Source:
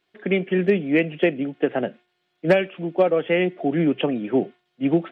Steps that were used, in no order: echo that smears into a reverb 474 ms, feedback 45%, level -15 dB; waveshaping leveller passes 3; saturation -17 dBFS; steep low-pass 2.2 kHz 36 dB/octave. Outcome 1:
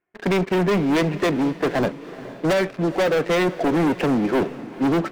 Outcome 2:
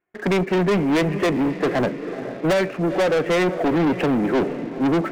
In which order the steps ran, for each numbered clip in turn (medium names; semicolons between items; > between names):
steep low-pass > waveshaping leveller > saturation > echo that smears into a reverb; steep low-pass > saturation > echo that smears into a reverb > waveshaping leveller